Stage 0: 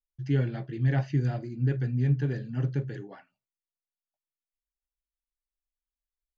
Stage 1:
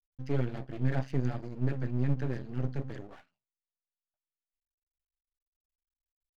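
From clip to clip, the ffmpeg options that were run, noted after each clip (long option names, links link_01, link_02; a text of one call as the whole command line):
ffmpeg -i in.wav -af "aeval=exprs='max(val(0),0)':channel_layout=same" out.wav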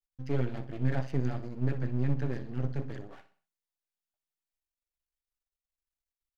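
ffmpeg -i in.wav -af "aecho=1:1:62|124|186|248:0.2|0.0798|0.0319|0.0128" out.wav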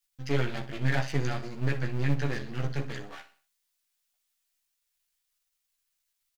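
ffmpeg -i in.wav -filter_complex "[0:a]tiltshelf=frequency=1100:gain=-8,asplit=2[link_01][link_02];[link_02]adelay=14,volume=-5dB[link_03];[link_01][link_03]amix=inputs=2:normalize=0,volume=6.5dB" out.wav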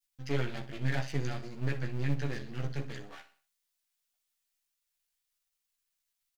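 ffmpeg -i in.wav -af "adynamicequalizer=threshold=0.00501:dfrequency=1100:dqfactor=0.79:tfrequency=1100:tqfactor=0.79:attack=5:release=100:ratio=0.375:range=2:mode=cutabove:tftype=bell,volume=-4dB" out.wav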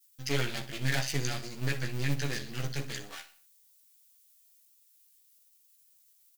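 ffmpeg -i in.wav -af "crystalizer=i=5.5:c=0" out.wav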